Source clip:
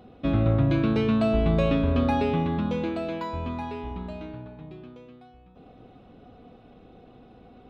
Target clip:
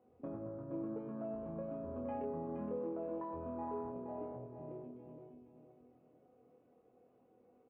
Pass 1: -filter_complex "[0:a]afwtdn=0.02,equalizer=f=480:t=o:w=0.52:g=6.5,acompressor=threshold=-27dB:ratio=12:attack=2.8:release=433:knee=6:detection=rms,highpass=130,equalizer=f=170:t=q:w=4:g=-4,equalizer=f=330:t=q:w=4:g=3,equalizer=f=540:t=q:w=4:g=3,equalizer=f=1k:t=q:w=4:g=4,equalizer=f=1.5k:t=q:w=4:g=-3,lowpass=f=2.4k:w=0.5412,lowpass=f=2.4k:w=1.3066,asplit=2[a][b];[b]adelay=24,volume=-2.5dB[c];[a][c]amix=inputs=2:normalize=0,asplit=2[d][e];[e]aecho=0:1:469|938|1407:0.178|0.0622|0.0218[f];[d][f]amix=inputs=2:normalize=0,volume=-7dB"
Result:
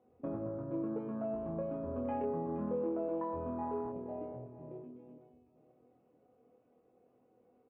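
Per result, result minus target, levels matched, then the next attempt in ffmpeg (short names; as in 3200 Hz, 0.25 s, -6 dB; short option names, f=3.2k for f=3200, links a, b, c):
compressor: peak gain reduction -5.5 dB; echo-to-direct -8 dB
-filter_complex "[0:a]afwtdn=0.02,equalizer=f=480:t=o:w=0.52:g=6.5,acompressor=threshold=-33dB:ratio=12:attack=2.8:release=433:knee=6:detection=rms,highpass=130,equalizer=f=170:t=q:w=4:g=-4,equalizer=f=330:t=q:w=4:g=3,equalizer=f=540:t=q:w=4:g=3,equalizer=f=1k:t=q:w=4:g=4,equalizer=f=1.5k:t=q:w=4:g=-3,lowpass=f=2.4k:w=0.5412,lowpass=f=2.4k:w=1.3066,asplit=2[a][b];[b]adelay=24,volume=-2.5dB[c];[a][c]amix=inputs=2:normalize=0,asplit=2[d][e];[e]aecho=0:1:469|938|1407:0.178|0.0622|0.0218[f];[d][f]amix=inputs=2:normalize=0,volume=-7dB"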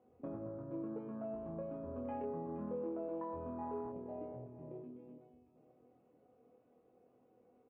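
echo-to-direct -8 dB
-filter_complex "[0:a]afwtdn=0.02,equalizer=f=480:t=o:w=0.52:g=6.5,acompressor=threshold=-33dB:ratio=12:attack=2.8:release=433:knee=6:detection=rms,highpass=130,equalizer=f=170:t=q:w=4:g=-4,equalizer=f=330:t=q:w=4:g=3,equalizer=f=540:t=q:w=4:g=3,equalizer=f=1k:t=q:w=4:g=4,equalizer=f=1.5k:t=q:w=4:g=-3,lowpass=f=2.4k:w=0.5412,lowpass=f=2.4k:w=1.3066,asplit=2[a][b];[b]adelay=24,volume=-2.5dB[c];[a][c]amix=inputs=2:normalize=0,asplit=2[d][e];[e]aecho=0:1:469|938|1407|1876:0.447|0.156|0.0547|0.0192[f];[d][f]amix=inputs=2:normalize=0,volume=-7dB"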